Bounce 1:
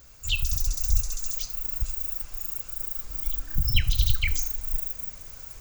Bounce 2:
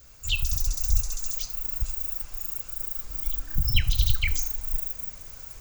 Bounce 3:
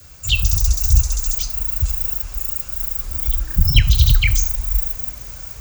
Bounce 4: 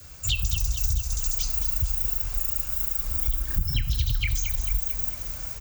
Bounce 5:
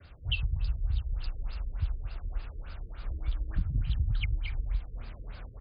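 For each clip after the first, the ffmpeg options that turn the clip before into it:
ffmpeg -i in.wav -af "adynamicequalizer=threshold=0.00112:dfrequency=870:dqfactor=3.2:tfrequency=870:tqfactor=3.2:attack=5:release=100:ratio=0.375:range=2:mode=boostabove:tftype=bell" out.wav
ffmpeg -i in.wav -af "afreqshift=22,asoftclip=type=hard:threshold=-11dB,volume=8.5dB" out.wav
ffmpeg -i in.wav -af "acompressor=threshold=-19dB:ratio=10,aecho=1:1:222|444|666|888|1110|1332:0.316|0.168|0.0888|0.0471|0.025|0.0132,volume=-2dB" out.wav
ffmpeg -i in.wav -af "afftfilt=real='re*lt(b*sr/1024,490*pow(5100/490,0.5+0.5*sin(2*PI*3.4*pts/sr)))':imag='im*lt(b*sr/1024,490*pow(5100/490,0.5+0.5*sin(2*PI*3.4*pts/sr)))':win_size=1024:overlap=0.75,volume=-3.5dB" out.wav

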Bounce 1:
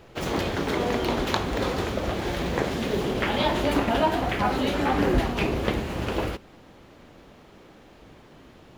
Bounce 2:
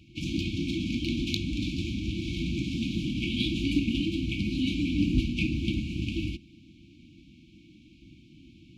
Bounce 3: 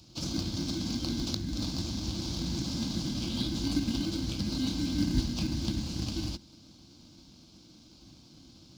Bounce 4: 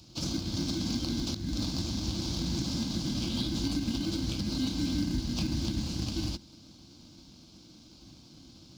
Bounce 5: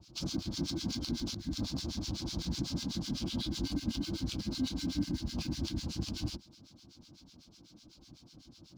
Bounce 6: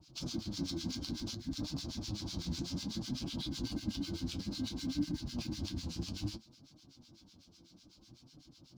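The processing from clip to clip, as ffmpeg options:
ffmpeg -i in.wav -af "highpass=47,adynamicsmooth=sensitivity=1.5:basefreq=5500,afftfilt=real='re*(1-between(b*sr/4096,350,2200))':imag='im*(1-between(b*sr/4096,350,2200))':win_size=4096:overlap=0.75" out.wav
ffmpeg -i in.wav -filter_complex "[0:a]highshelf=frequency=3400:width_type=q:width=3:gain=13.5,acrossover=split=420[link_01][link_02];[link_02]acompressor=threshold=-34dB:ratio=2.5[link_03];[link_01][link_03]amix=inputs=2:normalize=0,asplit=2[link_04][link_05];[link_05]acrusher=samples=24:mix=1:aa=0.000001,volume=-8dB[link_06];[link_04][link_06]amix=inputs=2:normalize=0,volume=-5.5dB" out.wav
ffmpeg -i in.wav -af "alimiter=limit=-22.5dB:level=0:latency=1:release=127,volume=1.5dB" out.wav
ffmpeg -i in.wav -filter_complex "[0:a]acrossover=split=1200[link_01][link_02];[link_01]aeval=exprs='val(0)*(1-1/2+1/2*cos(2*PI*8*n/s))':channel_layout=same[link_03];[link_02]aeval=exprs='val(0)*(1-1/2-1/2*cos(2*PI*8*n/s))':channel_layout=same[link_04];[link_03][link_04]amix=inputs=2:normalize=0" out.wav
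ffmpeg -i in.wav -af "flanger=delay=6.3:depth=5.9:regen=51:speed=0.59:shape=triangular,volume=1dB" out.wav

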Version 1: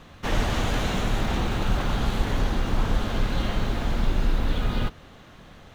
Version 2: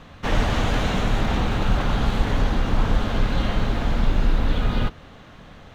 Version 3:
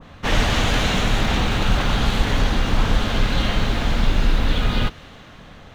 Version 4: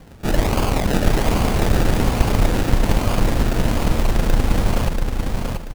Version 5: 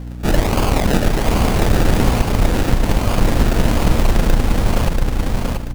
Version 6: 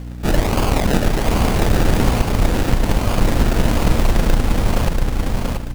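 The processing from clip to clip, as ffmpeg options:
ffmpeg -i in.wav -af "highshelf=frequency=7000:gain=-9.5,bandreject=frequency=360:width=12,volume=3.5dB" out.wav
ffmpeg -i in.wav -af "adynamicequalizer=threshold=0.00708:dfrequency=1700:dqfactor=0.7:tfrequency=1700:tqfactor=0.7:attack=5:release=100:ratio=0.375:range=3.5:mode=boostabove:tftype=highshelf,volume=1.5dB" out.wav
ffmpeg -i in.wav -af "acrusher=samples=33:mix=1:aa=0.000001:lfo=1:lforange=19.8:lforate=1.2,aeval=exprs='0.531*(cos(1*acos(clip(val(0)/0.531,-1,1)))-cos(1*PI/2))+0.168*(cos(2*acos(clip(val(0)/0.531,-1,1)))-cos(2*PI/2))':channel_layout=same,aecho=1:1:685|1370|2055|2740:0.631|0.189|0.0568|0.017" out.wav
ffmpeg -i in.wav -af "alimiter=limit=-5.5dB:level=0:latency=1:release=432,aeval=exprs='val(0)+0.0282*(sin(2*PI*60*n/s)+sin(2*PI*2*60*n/s)/2+sin(2*PI*3*60*n/s)/3+sin(2*PI*4*60*n/s)/4+sin(2*PI*5*60*n/s)/5)':channel_layout=same,volume=3.5dB" out.wav
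ffmpeg -i in.wav -af "acrusher=bits=6:mode=log:mix=0:aa=0.000001,volume=-1dB" out.wav

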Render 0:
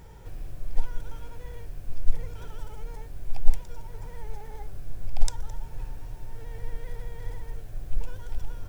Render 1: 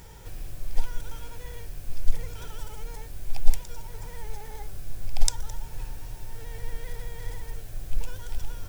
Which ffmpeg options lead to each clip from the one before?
ffmpeg -i in.wav -af "highshelf=frequency=2200:gain=10.5" out.wav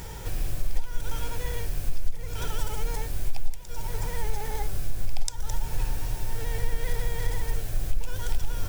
ffmpeg -i in.wav -af "acompressor=threshold=-25dB:ratio=8,volume=8.5dB" out.wav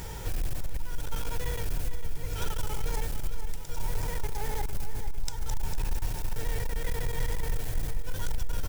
ffmpeg -i in.wav -af "asoftclip=type=hard:threshold=-23dB,aecho=1:1:452|904|1356|1808|2260|2712:0.299|0.167|0.0936|0.0524|0.0294|0.0164" out.wav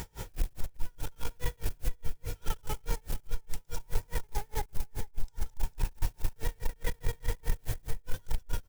ffmpeg -i in.wav -af "aeval=exprs='val(0)*pow(10,-36*(0.5-0.5*cos(2*PI*4.8*n/s))/20)':channel_layout=same,volume=3dB" out.wav

